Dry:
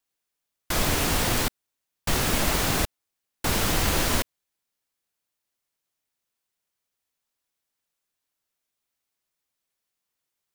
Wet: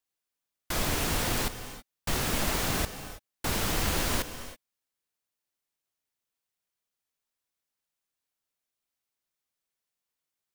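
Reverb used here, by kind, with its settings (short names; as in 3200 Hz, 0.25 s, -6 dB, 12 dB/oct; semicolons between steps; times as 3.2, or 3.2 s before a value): non-linear reverb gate 0.35 s rising, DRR 11.5 dB; gain -5 dB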